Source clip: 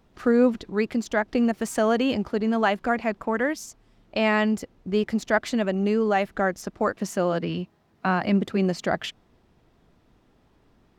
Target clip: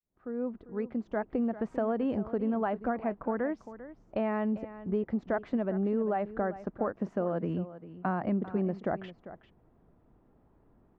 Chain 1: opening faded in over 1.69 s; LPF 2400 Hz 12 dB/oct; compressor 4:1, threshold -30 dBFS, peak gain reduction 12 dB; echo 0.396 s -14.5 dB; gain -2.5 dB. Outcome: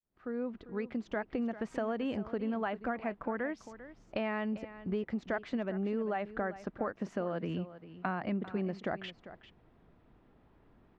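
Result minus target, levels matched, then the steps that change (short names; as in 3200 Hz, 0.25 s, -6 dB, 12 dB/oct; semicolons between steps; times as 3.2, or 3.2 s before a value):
2000 Hz band +6.0 dB; compressor: peak gain reduction +5 dB
change: LPF 1100 Hz 12 dB/oct; change: compressor 4:1, threshold -24 dBFS, peak gain reduction 6.5 dB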